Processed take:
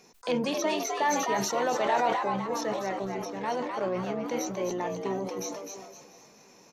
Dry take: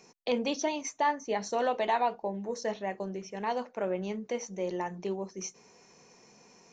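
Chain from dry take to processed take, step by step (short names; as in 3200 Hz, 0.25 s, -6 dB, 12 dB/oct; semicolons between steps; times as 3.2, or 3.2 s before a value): feedback echo 0.694 s, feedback 24%, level -22 dB; harmoniser -7 st -13 dB, +12 st -15 dB; on a send: frequency-shifting echo 0.256 s, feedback 36%, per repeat +100 Hz, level -5 dB; on the sum: sustainer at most 39 dB/s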